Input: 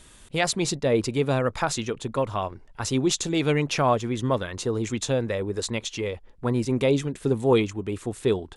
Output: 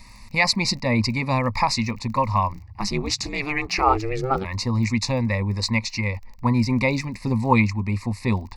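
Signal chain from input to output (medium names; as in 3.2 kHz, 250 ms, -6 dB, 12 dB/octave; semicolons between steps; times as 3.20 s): rippled EQ curve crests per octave 0.91, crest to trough 11 dB; crackle 17 per s -37 dBFS; static phaser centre 2.2 kHz, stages 8; 2.52–4.44 s: ring modulator 78 Hz -> 290 Hz; trim +6.5 dB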